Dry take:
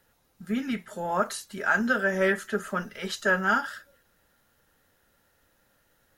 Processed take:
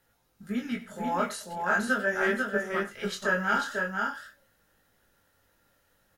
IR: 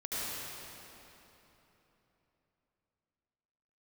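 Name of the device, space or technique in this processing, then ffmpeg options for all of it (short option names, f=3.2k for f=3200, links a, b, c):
double-tracked vocal: -filter_complex "[0:a]asettb=1/sr,asplit=3[a][b][c];[a]atrim=end=1.534[d];[b]atrim=start=1.53:end=2.89,asetpts=PTS-STARTPTS,afade=t=in:d=0.004:c=qsin,afade=t=out:st=1.356:d=0.004:c=qsin,agate=range=-11dB:threshold=-29dB:ratio=16:detection=peak[e];[c]atrim=start=2.886[f];[d][e]acrossfade=d=0.004:c1=hsin:c2=qsin[g];[g][f]acrossfade=d=0.004:c1=qsin:c2=hsin,asplit=2[h][i];[i]adelay=20,volume=-12.5dB[j];[h][j]amix=inputs=2:normalize=0,flanger=delay=18.5:depth=3.8:speed=0.44,aecho=1:1:93|493|534:0.15|0.631|0.141"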